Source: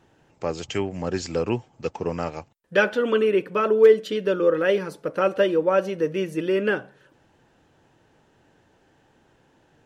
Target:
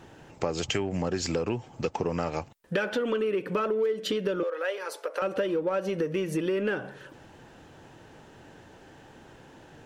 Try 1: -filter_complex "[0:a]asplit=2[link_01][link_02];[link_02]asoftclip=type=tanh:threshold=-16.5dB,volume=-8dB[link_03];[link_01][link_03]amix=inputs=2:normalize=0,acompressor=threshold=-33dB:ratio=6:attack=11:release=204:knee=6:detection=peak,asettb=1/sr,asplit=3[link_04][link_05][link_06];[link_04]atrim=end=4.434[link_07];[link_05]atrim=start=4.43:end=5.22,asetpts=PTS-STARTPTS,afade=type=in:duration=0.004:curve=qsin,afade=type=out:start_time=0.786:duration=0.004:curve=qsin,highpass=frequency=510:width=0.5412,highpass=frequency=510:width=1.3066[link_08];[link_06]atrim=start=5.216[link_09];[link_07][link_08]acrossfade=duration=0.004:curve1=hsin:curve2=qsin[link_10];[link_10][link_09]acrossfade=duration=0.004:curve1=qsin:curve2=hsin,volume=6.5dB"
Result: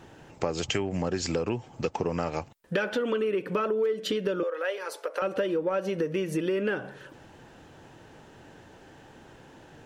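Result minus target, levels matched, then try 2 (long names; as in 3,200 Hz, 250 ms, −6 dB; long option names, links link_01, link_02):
soft clipping: distortion −6 dB
-filter_complex "[0:a]asplit=2[link_01][link_02];[link_02]asoftclip=type=tanh:threshold=-25.5dB,volume=-8dB[link_03];[link_01][link_03]amix=inputs=2:normalize=0,acompressor=threshold=-33dB:ratio=6:attack=11:release=204:knee=6:detection=peak,asettb=1/sr,asplit=3[link_04][link_05][link_06];[link_04]atrim=end=4.434[link_07];[link_05]atrim=start=4.43:end=5.22,asetpts=PTS-STARTPTS,afade=type=in:duration=0.004:curve=qsin,afade=type=out:start_time=0.786:duration=0.004:curve=qsin,highpass=frequency=510:width=0.5412,highpass=frequency=510:width=1.3066[link_08];[link_06]atrim=start=5.216[link_09];[link_07][link_08]acrossfade=duration=0.004:curve1=hsin:curve2=qsin[link_10];[link_10][link_09]acrossfade=duration=0.004:curve1=qsin:curve2=hsin,volume=6.5dB"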